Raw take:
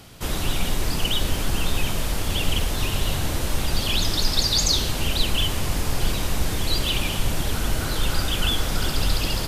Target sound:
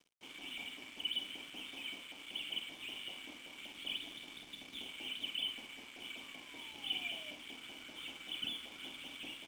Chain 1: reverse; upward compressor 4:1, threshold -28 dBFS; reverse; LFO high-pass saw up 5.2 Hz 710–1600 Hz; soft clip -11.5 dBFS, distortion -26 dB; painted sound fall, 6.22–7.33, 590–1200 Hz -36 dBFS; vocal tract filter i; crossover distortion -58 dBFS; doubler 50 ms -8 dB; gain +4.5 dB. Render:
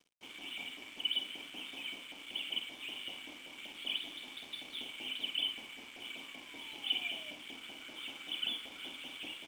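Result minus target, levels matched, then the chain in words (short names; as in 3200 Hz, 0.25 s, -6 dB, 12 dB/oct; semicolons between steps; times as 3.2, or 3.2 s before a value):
soft clip: distortion -14 dB
reverse; upward compressor 4:1, threshold -28 dBFS; reverse; LFO high-pass saw up 5.2 Hz 710–1600 Hz; soft clip -23 dBFS, distortion -12 dB; painted sound fall, 6.22–7.33, 590–1200 Hz -36 dBFS; vocal tract filter i; crossover distortion -58 dBFS; doubler 50 ms -8 dB; gain +4.5 dB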